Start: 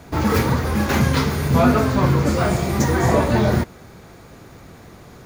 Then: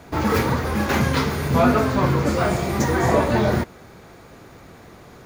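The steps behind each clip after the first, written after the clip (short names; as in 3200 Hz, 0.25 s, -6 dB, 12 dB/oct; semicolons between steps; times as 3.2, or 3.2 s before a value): tone controls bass -4 dB, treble -3 dB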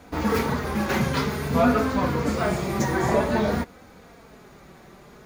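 flange 0.52 Hz, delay 3.8 ms, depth 1.6 ms, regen -27%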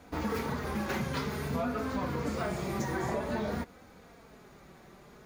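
compressor, threshold -23 dBFS, peak gain reduction 8.5 dB; gain -6 dB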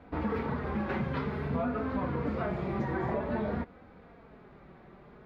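air absorption 420 m; gain +2 dB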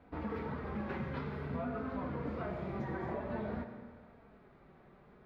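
digital reverb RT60 1.6 s, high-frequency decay 0.85×, pre-delay 40 ms, DRR 7.5 dB; gain -7.5 dB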